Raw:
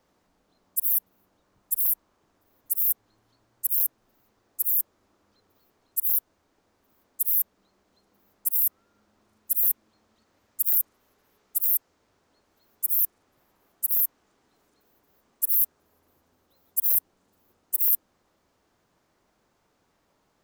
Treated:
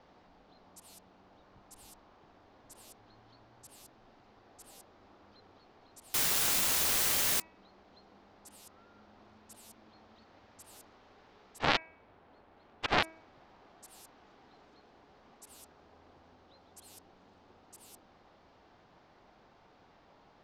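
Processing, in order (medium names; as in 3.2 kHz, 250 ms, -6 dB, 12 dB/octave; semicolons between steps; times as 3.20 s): 11.59–13.03 s: median filter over 9 samples; low-pass 4.7 kHz 24 dB/octave; peaking EQ 770 Hz +5.5 dB 0.49 oct; 6.14–7.40 s: word length cut 6-bit, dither triangular; de-hum 322.8 Hz, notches 8; trim +7 dB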